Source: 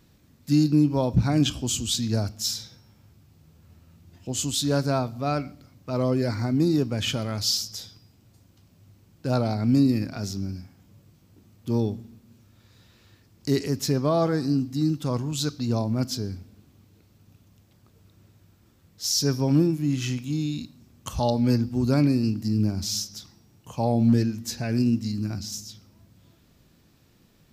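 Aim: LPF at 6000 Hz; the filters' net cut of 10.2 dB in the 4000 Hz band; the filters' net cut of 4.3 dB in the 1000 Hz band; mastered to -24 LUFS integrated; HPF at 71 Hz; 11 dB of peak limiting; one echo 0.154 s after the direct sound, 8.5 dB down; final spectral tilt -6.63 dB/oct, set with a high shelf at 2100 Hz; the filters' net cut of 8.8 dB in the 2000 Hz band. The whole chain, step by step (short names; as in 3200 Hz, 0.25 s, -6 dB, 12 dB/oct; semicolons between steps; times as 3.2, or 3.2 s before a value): HPF 71 Hz; LPF 6000 Hz; bell 1000 Hz -3.5 dB; bell 2000 Hz -6 dB; high shelf 2100 Hz -6.5 dB; bell 4000 Hz -3.5 dB; limiter -21.5 dBFS; echo 0.154 s -8.5 dB; gain +7 dB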